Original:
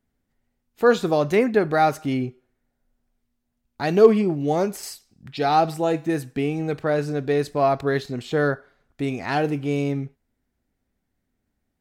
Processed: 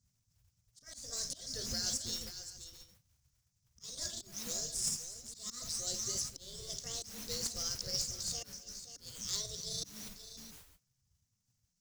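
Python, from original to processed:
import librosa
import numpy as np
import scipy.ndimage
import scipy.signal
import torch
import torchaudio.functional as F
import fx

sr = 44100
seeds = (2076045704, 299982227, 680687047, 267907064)

p1 = fx.pitch_ramps(x, sr, semitones=8.0, every_ms=1405)
p2 = scipy.signal.sosfilt(scipy.signal.ellip(3, 1.0, 40, [130.0, 5600.0], 'bandstop', fs=sr, output='sos'), p1)
p3 = fx.rider(p2, sr, range_db=10, speed_s=2.0)
p4 = p2 + (p3 * librosa.db_to_amplitude(0.0))
p5 = scipy.signal.sosfilt(scipy.signal.butter(4, 7100.0, 'lowpass', fs=sr, output='sos'), p4)
p6 = p5 + fx.echo_multitap(p5, sr, ms=(53, 252, 529, 673), db=(-11.5, -16.5, -12.0, -18.0), dry=0)
p7 = fx.mod_noise(p6, sr, seeds[0], snr_db=24)
p8 = fx.auto_swell(p7, sr, attack_ms=269.0)
p9 = fx.peak_eq(p8, sr, hz=150.0, db=-14.0, octaves=0.21)
p10 = np.clip(10.0 ** (29.0 / 20.0) * p9, -1.0, 1.0) / 10.0 ** (29.0 / 20.0)
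p11 = fx.spec_gate(p10, sr, threshold_db=-10, keep='weak')
y = p11 * librosa.db_to_amplitude(8.5)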